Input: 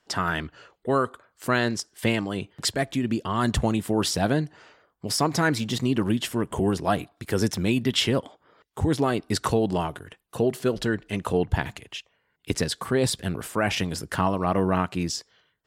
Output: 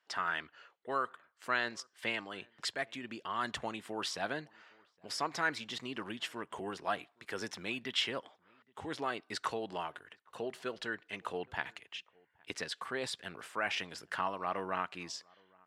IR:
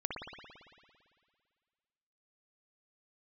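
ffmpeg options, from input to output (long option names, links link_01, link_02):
-filter_complex "[0:a]bandpass=frequency=1900:width_type=q:width=0.68:csg=0,asplit=2[link_01][link_02];[link_02]adelay=816.3,volume=-28dB,highshelf=frequency=4000:gain=-18.4[link_03];[link_01][link_03]amix=inputs=2:normalize=0,volume=-6dB"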